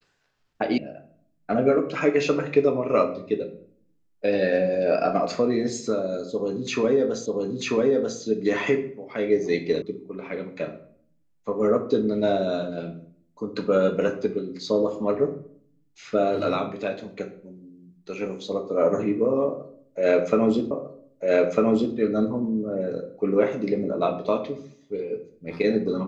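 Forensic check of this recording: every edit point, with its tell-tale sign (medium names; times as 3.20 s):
0.78 s: sound stops dead
7.26 s: repeat of the last 0.94 s
9.82 s: sound stops dead
20.71 s: repeat of the last 1.25 s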